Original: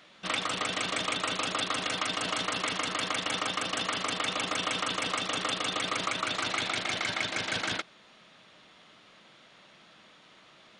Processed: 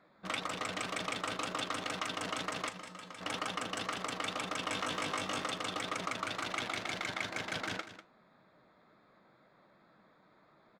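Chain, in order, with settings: Wiener smoothing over 15 samples; 2.69–3.21 resonator 180 Hz, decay 0.3 s, harmonics odd, mix 80%; flange 2 Hz, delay 4.6 ms, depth 6.4 ms, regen +74%; 4.69–5.45 doubler 20 ms -3.5 dB; on a send: echo 0.195 s -13 dB

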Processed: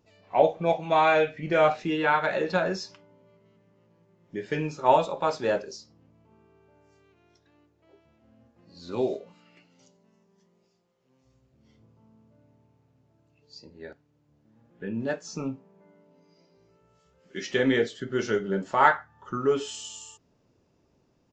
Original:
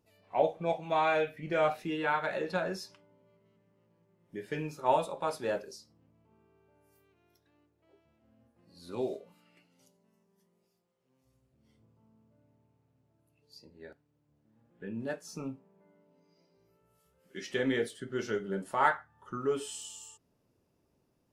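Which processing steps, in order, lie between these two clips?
downsampling 16000 Hz; gain +7 dB

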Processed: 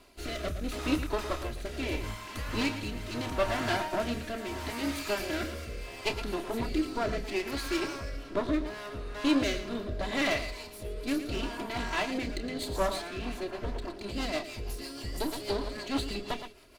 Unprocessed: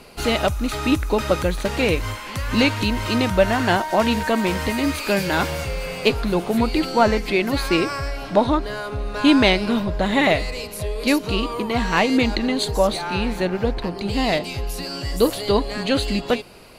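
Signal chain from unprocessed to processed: minimum comb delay 3 ms; loudspeakers at several distances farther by 10 m -11 dB, 39 m -11 dB; rotary speaker horn 0.75 Hz, later 6.3 Hz, at 12.81; gain -8.5 dB

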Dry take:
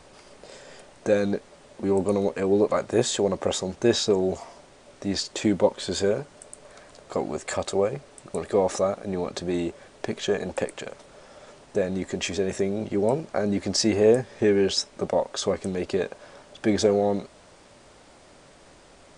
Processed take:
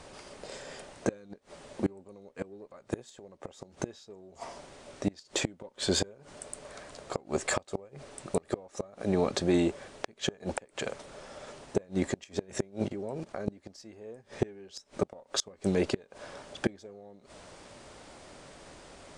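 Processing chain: added harmonics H 6 -33 dB, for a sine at -7.5 dBFS; 12.88–13.48 level quantiser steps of 19 dB; flipped gate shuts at -16 dBFS, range -29 dB; gain +1.5 dB

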